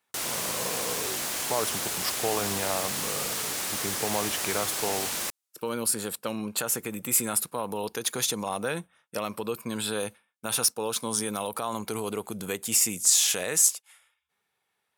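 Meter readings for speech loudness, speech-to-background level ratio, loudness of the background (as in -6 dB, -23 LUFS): -28.0 LUFS, 0.5 dB, -28.5 LUFS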